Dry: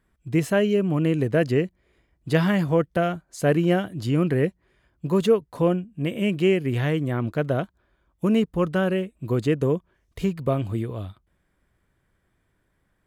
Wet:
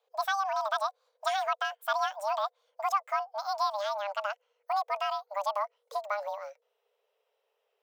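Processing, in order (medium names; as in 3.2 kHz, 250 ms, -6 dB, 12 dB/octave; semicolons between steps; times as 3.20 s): gliding tape speed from 188% -> 146%; frequency shift +400 Hz; trim -9 dB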